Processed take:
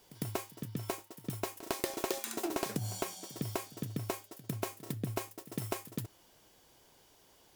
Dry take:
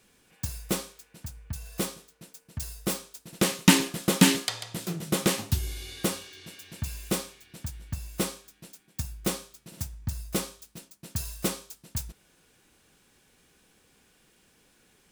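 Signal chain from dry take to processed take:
phase distortion by the signal itself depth 0.37 ms
downward compressor 20 to 1, threshold −29 dBFS, peak gain reduction 18.5 dB
echo ahead of the sound 207 ms −17 dB
wrong playback speed 7.5 ips tape played at 15 ips

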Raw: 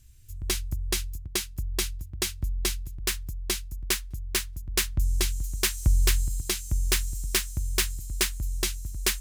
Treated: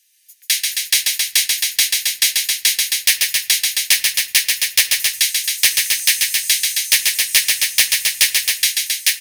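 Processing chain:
Butterworth high-pass 1,700 Hz 72 dB per octave
notch filter 7,500 Hz, Q 6.5
comb filter 7.3 ms, depth 40%
automatic gain control gain up to 11.5 dB
in parallel at −9.5 dB: sine wavefolder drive 8 dB, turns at −0.5 dBFS
on the sum: loudspeakers that aren't time-aligned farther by 47 metres −4 dB, 92 metres −5 dB
on a send at −12 dB: convolution reverb RT60 0.65 s, pre-delay 6 ms
on the sum: saturating transformer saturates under 2,200 Hz
level −1 dB

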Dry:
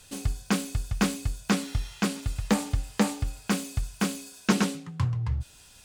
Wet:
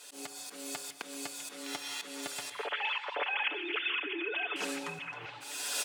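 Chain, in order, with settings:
0:02.51–0:04.56: three sine waves on the formant tracks
camcorder AGC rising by 42 dB per second
high-pass filter 330 Hz 24 dB per octave
comb filter 6.9 ms, depth 60%
downward compressor 1.5 to 1, threshold −37 dBFS, peak gain reduction 8 dB
volume swells 260 ms
echo through a band-pass that steps 653 ms, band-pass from 2,700 Hz, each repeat −0.7 octaves, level −6 dB
convolution reverb RT60 0.55 s, pre-delay 120 ms, DRR 13 dB

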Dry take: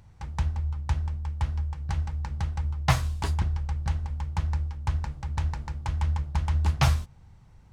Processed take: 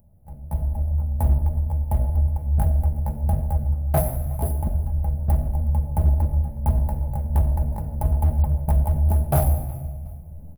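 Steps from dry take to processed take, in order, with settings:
running median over 3 samples
dynamic equaliser 150 Hz, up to −6 dB, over −40 dBFS, Q 1
mains-hum notches 60/120/180 Hz
automatic gain control gain up to 15 dB
drawn EQ curve 100 Hz 0 dB, 160 Hz +1 dB, 260 Hz +1 dB, 410 Hz −6 dB, 610 Hz +7 dB, 1,100 Hz −20 dB, 1,700 Hz −23 dB, 3,200 Hz −28 dB, 6,800 Hz −28 dB, 11,000 Hz +13 dB
rectangular room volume 3,300 cubic metres, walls furnished, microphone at 1.4 metres
tempo change 0.73×
repeating echo 367 ms, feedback 32%, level −22 dB
hard clipping −11 dBFS, distortion −20 dB
tuned comb filter 71 Hz, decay 1.4 s, harmonics all, mix 60%
level +5 dB

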